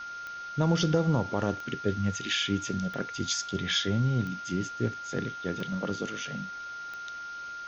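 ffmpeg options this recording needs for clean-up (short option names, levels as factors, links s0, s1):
-af "adeclick=t=4,bandreject=f=1400:w=30,afwtdn=0.004"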